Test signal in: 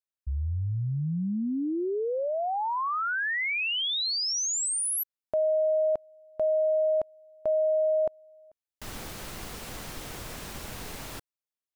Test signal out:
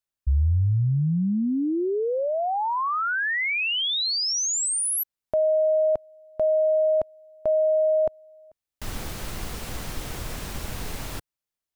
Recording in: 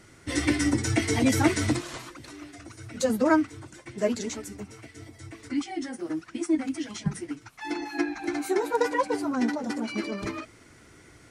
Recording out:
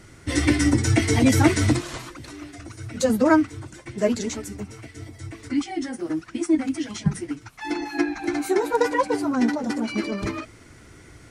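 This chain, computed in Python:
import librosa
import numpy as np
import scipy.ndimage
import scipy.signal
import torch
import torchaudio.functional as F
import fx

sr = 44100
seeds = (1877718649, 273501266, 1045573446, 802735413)

y = fx.low_shelf(x, sr, hz=120.0, db=8.0)
y = y * 10.0 ** (3.5 / 20.0)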